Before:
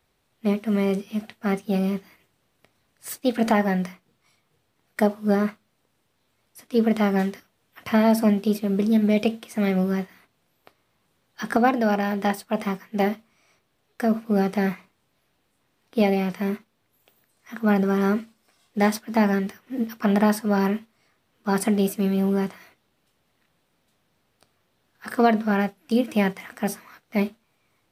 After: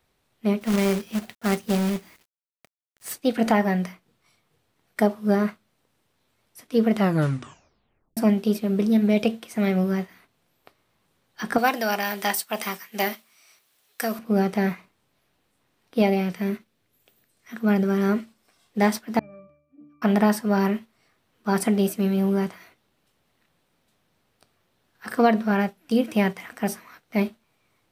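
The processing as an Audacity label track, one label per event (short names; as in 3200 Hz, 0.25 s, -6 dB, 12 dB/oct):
0.610000	3.130000	companded quantiser 4-bit
6.960000	6.960000	tape stop 1.21 s
11.580000	14.190000	tilt +4 dB/oct
16.210000	18.090000	bell 940 Hz -5.5 dB 1.1 oct
19.190000	20.020000	octave resonator D, decay 0.63 s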